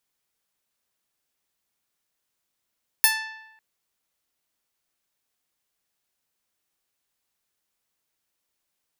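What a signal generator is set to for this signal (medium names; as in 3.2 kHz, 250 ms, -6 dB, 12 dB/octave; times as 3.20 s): plucked string A5, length 0.55 s, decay 0.97 s, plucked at 0.21, bright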